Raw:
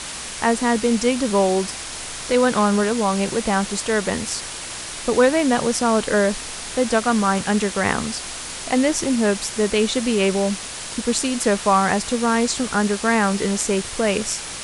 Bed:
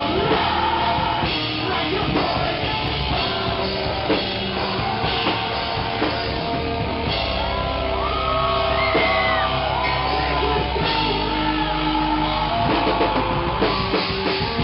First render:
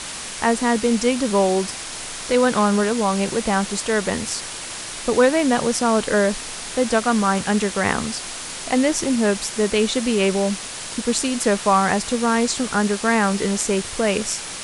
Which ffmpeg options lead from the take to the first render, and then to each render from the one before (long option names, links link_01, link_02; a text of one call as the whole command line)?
ffmpeg -i in.wav -af "bandreject=frequency=60:width_type=h:width=4,bandreject=frequency=120:width_type=h:width=4" out.wav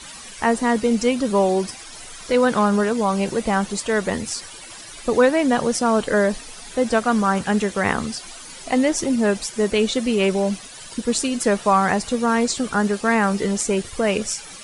ffmpeg -i in.wav -af "afftdn=noise_reduction=13:noise_floor=-32" out.wav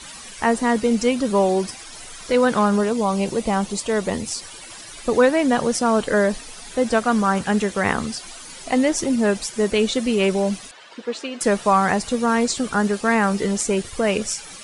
ffmpeg -i in.wav -filter_complex "[0:a]asettb=1/sr,asplit=3[link_01][link_02][link_03];[link_01]atrim=end=2.784[link_04];[link_02]atrim=start=2.78:end=4.45,asetpts=PTS-STARTPTS,afade=type=in:duration=0.004:curve=qsin,afade=type=out:start_time=1.666:duration=0.004:curve=qsin,equalizer=frequency=1600:width=2.2:gain=-6.5[link_05];[link_03]atrim=start=4.446[link_06];[link_04][link_05]acrossfade=duration=0.004:curve1=hsin:curve2=qsin[link_07];[link_07][link_06]acrossfade=duration=0.004:curve1=qsin:curve2=hsin,asettb=1/sr,asplit=3[link_08][link_09][link_10];[link_08]atrim=end=10.714[link_11];[link_09]atrim=start=10.71:end=11.41,asetpts=PTS-STARTPTS,afade=type=in:duration=0.004:curve=qsin,afade=type=out:start_time=0.696:duration=0.004:curve=qsin,highpass=430,lowpass=2900[link_12];[link_10]atrim=start=11.406[link_13];[link_11][link_12]acrossfade=duration=0.004:curve1=hsin:curve2=qsin[link_14];[link_14][link_13]acrossfade=duration=0.004:curve1=qsin:curve2=hsin" out.wav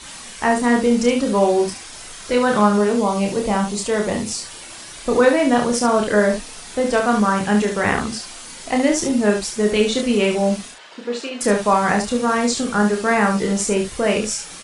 ffmpeg -i in.wav -af "aecho=1:1:29|71:0.631|0.473" out.wav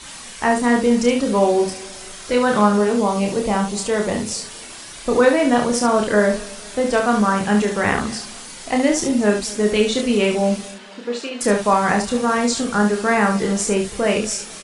ffmpeg -i in.wav -af "aecho=1:1:236|472|708:0.0891|0.0401|0.018" out.wav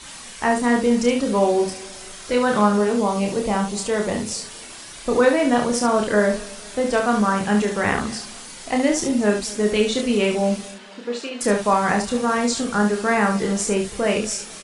ffmpeg -i in.wav -af "volume=-2dB" out.wav